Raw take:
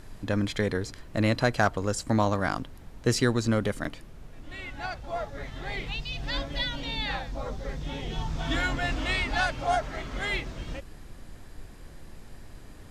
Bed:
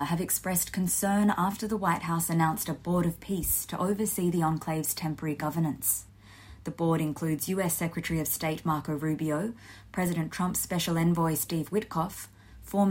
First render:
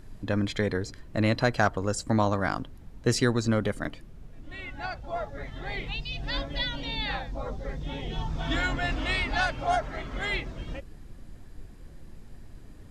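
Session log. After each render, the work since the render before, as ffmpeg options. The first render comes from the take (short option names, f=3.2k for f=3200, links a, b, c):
-af "afftdn=nr=7:nf=-47"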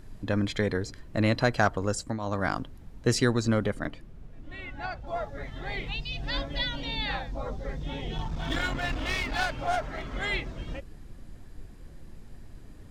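-filter_complex "[0:a]asettb=1/sr,asplit=3[a][b][c];[a]atrim=end=3.654[d];[b]atrim=start=3.65:end=5.07,asetpts=PTS-STARTPTS,afade=t=in:d=0.004:c=qsin,afade=t=out:st=1.416:d=0.004:c=qsin,highshelf=f=4.2k:g=-6.5[e];[c]atrim=start=5.066[f];[d][e]acrossfade=d=0.004:c1=hsin:c2=qsin[g];[g][f]acrossfade=d=0.004:c1=qsin:c2=hsin,asettb=1/sr,asplit=3[h][i][j];[h]atrim=end=8.184[k];[i]atrim=start=8.18:end=10.09,asetpts=PTS-STARTPTS,afade=t=in:d=0.004:c=qsin,afade=t=out:st=1.906:d=0.004:c=qsin,aeval=exprs='clip(val(0),-1,0.0299)':c=same[l];[j]atrim=start=10.086[m];[k][l]acrossfade=d=0.004:c1=hsin:c2=qsin[n];[n][m]acrossfade=d=0.004:c1=qsin:c2=hsin,asplit=3[o][p][q];[o]atrim=end=2.19,asetpts=PTS-STARTPTS,afade=t=out:st=1.88:d=0.31:c=qsin:silence=0.211349[r];[p]atrim=start=2.19:end=2.2,asetpts=PTS-STARTPTS,volume=-13.5dB[s];[q]atrim=start=2.2,asetpts=PTS-STARTPTS,afade=t=in:d=0.31:c=qsin:silence=0.211349[t];[r][s][t]concat=n=3:v=0:a=1"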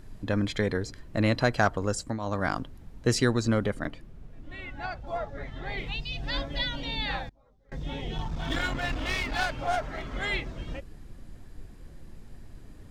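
-filter_complex "[0:a]asettb=1/sr,asplit=3[a][b][c];[a]atrim=end=5.174[d];[b]atrim=start=5.17:end=5.78,asetpts=PTS-STARTPTS,afade=t=in:d=0.004:c=qsin,afade=t=out:st=0.606:d=0.004:c=qsin,highshelf=f=7k:g=-9.5[e];[c]atrim=start=5.776[f];[d][e]acrossfade=d=0.004:c1=hsin:c2=qsin[g];[g][f]acrossfade=d=0.004:c1=qsin:c2=hsin,asettb=1/sr,asplit=3[h][i][j];[h]atrim=end=7.294[k];[i]atrim=start=7.29:end=7.72,asetpts=PTS-STARTPTS,afade=t=in:d=0.004:c=qsin,afade=t=out:st=0.426:d=0.004:c=qsin,agate=range=-29dB:threshold=-27dB:ratio=16:release=100:detection=peak[l];[j]atrim=start=7.716[m];[k][l]acrossfade=d=0.004:c1=hsin:c2=qsin[n];[n][m]acrossfade=d=0.004:c1=qsin:c2=hsin"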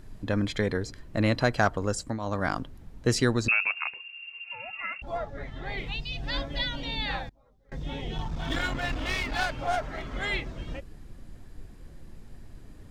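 -filter_complex "[0:a]asettb=1/sr,asplit=3[a][b][c];[a]atrim=end=3.484[d];[b]atrim=start=3.48:end=5.02,asetpts=PTS-STARTPTS,afade=t=in:d=0.004:c=qsin,afade=t=out:st=1.536:d=0.004:c=qsin,lowpass=f=2.4k:t=q:w=0.5098,lowpass=f=2.4k:t=q:w=0.6013,lowpass=f=2.4k:t=q:w=0.9,lowpass=f=2.4k:t=q:w=2.563,afreqshift=-2800[e];[c]atrim=start=5.016[f];[d][e]acrossfade=d=0.004:c1=hsin:c2=qsin[g];[g][f]acrossfade=d=0.004:c1=qsin:c2=hsin"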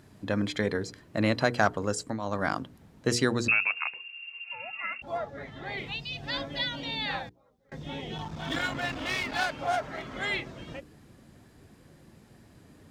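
-af "highpass=120,bandreject=f=60:t=h:w=6,bandreject=f=120:t=h:w=6,bandreject=f=180:t=h:w=6,bandreject=f=240:t=h:w=6,bandreject=f=300:t=h:w=6,bandreject=f=360:t=h:w=6,bandreject=f=420:t=h:w=6,bandreject=f=480:t=h:w=6"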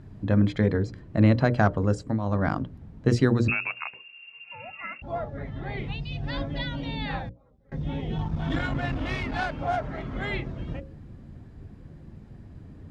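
-af "aemphasis=mode=reproduction:type=riaa,bandreject=f=60:t=h:w=6,bandreject=f=120:t=h:w=6,bandreject=f=180:t=h:w=6,bandreject=f=240:t=h:w=6,bandreject=f=300:t=h:w=6,bandreject=f=360:t=h:w=6,bandreject=f=420:t=h:w=6,bandreject=f=480:t=h:w=6,bandreject=f=540:t=h:w=6,bandreject=f=600:t=h:w=6"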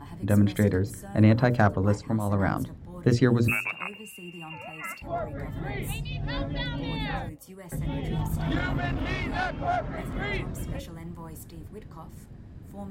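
-filter_complex "[1:a]volume=-16dB[a];[0:a][a]amix=inputs=2:normalize=0"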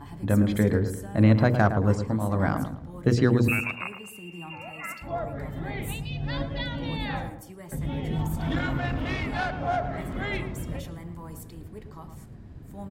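-filter_complex "[0:a]asplit=2[a][b];[b]adelay=111,lowpass=f=1.4k:p=1,volume=-8dB,asplit=2[c][d];[d]adelay=111,lowpass=f=1.4k:p=1,volume=0.39,asplit=2[e][f];[f]adelay=111,lowpass=f=1.4k:p=1,volume=0.39,asplit=2[g][h];[h]adelay=111,lowpass=f=1.4k:p=1,volume=0.39[i];[a][c][e][g][i]amix=inputs=5:normalize=0"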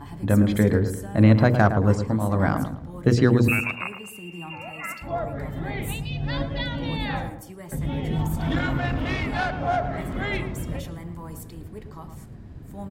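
-af "volume=3dB"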